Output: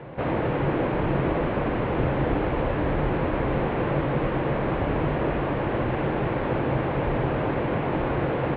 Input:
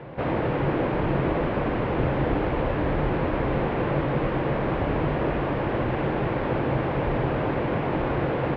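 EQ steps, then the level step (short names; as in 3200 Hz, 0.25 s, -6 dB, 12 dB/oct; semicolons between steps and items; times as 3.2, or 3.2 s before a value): LPF 4200 Hz 24 dB/oct; 0.0 dB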